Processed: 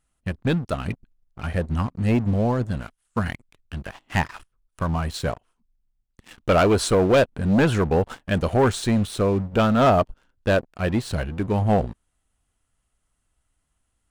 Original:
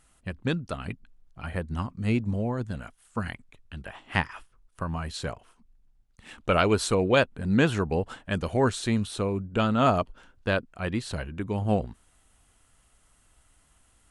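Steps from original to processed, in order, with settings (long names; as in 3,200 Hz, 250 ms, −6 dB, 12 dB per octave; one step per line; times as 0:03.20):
low-shelf EQ 310 Hz +4 dB
leveller curve on the samples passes 3
dynamic equaliser 690 Hz, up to +5 dB, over −25 dBFS, Q 0.99
level −7 dB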